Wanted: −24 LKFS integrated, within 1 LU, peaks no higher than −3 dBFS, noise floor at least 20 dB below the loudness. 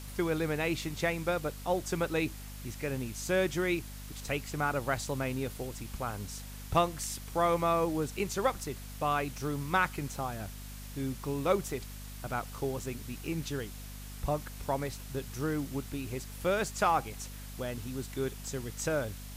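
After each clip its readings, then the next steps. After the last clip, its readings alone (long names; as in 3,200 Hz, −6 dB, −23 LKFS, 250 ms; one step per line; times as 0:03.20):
mains hum 50 Hz; hum harmonics up to 250 Hz; level of the hum −42 dBFS; background noise floor −44 dBFS; target noise floor −54 dBFS; integrated loudness −33.5 LKFS; sample peak −13.0 dBFS; target loudness −24.0 LKFS
→ hum removal 50 Hz, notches 5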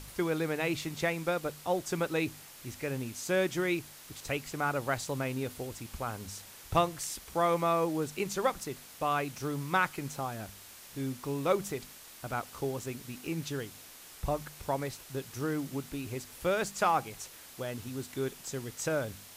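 mains hum none found; background noise floor −51 dBFS; target noise floor −54 dBFS
→ broadband denoise 6 dB, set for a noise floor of −51 dBFS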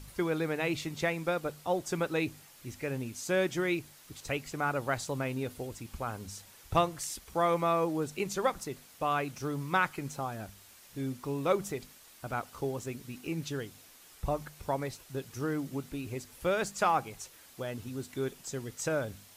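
background noise floor −56 dBFS; integrated loudness −33.5 LKFS; sample peak −13.0 dBFS; target loudness −24.0 LKFS
→ level +9.5 dB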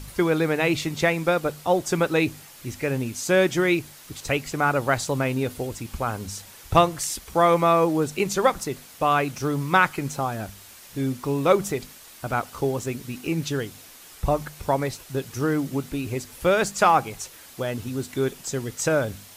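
integrated loudness −24.0 LKFS; sample peak −3.5 dBFS; background noise floor −47 dBFS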